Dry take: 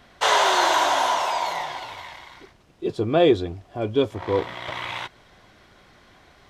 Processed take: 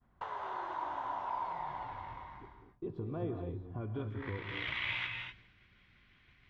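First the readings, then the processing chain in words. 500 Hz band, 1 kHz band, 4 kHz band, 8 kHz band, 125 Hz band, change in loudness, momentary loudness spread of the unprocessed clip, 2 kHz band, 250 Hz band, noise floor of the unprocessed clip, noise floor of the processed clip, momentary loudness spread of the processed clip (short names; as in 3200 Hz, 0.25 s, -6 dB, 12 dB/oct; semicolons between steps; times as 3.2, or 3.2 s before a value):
-21.5 dB, -16.0 dB, -18.5 dB, n/a, -8.0 dB, -17.0 dB, 16 LU, -13.0 dB, -16.5 dB, -55 dBFS, -67 dBFS, 12 LU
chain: expander -44 dBFS; passive tone stack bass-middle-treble 6-0-2; compressor 6:1, threshold -53 dBFS, peak gain reduction 16 dB; low-pass sweep 930 Hz -> 2500 Hz, 3.67–4.49; non-linear reverb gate 0.27 s rising, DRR 3.5 dB; gain +14.5 dB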